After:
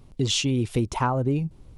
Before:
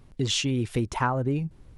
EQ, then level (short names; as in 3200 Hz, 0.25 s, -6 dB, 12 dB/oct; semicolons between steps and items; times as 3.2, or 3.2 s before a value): bell 1700 Hz -7 dB 0.7 oct; +2.5 dB